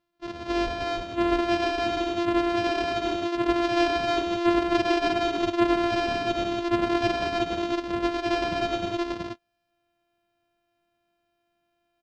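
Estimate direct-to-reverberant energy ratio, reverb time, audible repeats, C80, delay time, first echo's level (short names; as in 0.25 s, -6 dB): none, none, 3, none, 0.129 s, -9.0 dB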